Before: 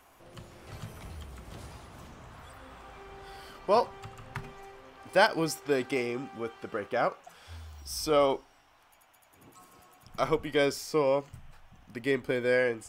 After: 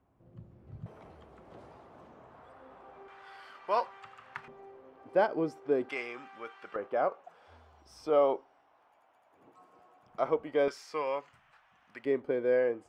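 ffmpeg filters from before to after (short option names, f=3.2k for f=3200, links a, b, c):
-af "asetnsamples=n=441:p=0,asendcmd='0.86 bandpass f 540;3.08 bandpass f 1500;4.48 bandpass f 400;5.89 bandpass f 1600;6.76 bandpass f 600;10.68 bandpass f 1500;12.05 bandpass f 480',bandpass=f=130:t=q:w=0.91:csg=0"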